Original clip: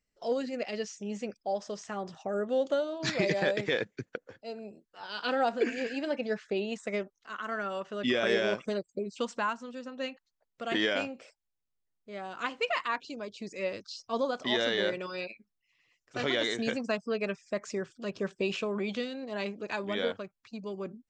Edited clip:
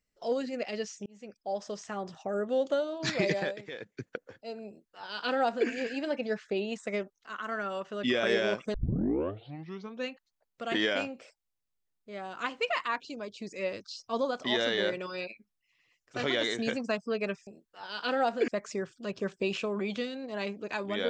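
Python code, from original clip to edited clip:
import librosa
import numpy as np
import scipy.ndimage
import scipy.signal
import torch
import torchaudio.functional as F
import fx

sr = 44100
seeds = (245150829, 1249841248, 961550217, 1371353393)

y = fx.edit(x, sr, fx.fade_in_span(start_s=1.06, length_s=0.57),
    fx.fade_down_up(start_s=3.32, length_s=0.73, db=-12.5, fade_s=0.26),
    fx.duplicate(start_s=4.67, length_s=1.01, to_s=17.47),
    fx.tape_start(start_s=8.74, length_s=1.34), tone=tone)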